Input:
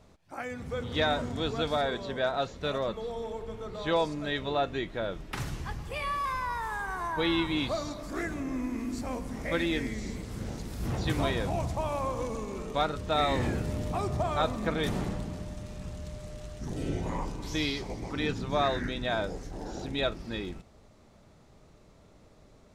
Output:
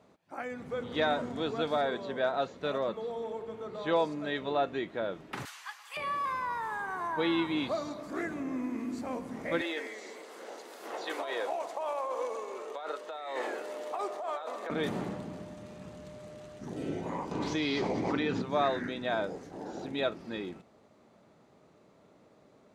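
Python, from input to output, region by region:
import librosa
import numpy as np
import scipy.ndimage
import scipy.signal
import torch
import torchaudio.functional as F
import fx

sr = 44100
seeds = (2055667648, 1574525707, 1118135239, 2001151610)

y = fx.chain(x, sr, fx.highpass(hz=1000.0, slope=24),
    fx.high_shelf(hz=2600.0, db=9.0), at=(5.45, 5.97))
y = fx.chain(y, sr, fx.highpass(hz=430.0, slope=24),
    fx.over_compress(threshold_db=-34.0, ratio=-1.0),
    fx.notch(hz=2400.0, q=25.0), at=(9.61, 14.7))
y = fx.chain(y, sr, fx.lowpass(hz=6200.0, slope=12),
    fx.env_flatten(amount_pct=100), at=(17.31, 18.42))
y = scipy.signal.sosfilt(scipy.signal.butter(2, 200.0, 'highpass', fs=sr, output='sos'), y)
y = fx.high_shelf(y, sr, hz=3100.0, db=-9.0)
y = fx.notch(y, sr, hz=5400.0, q=19.0)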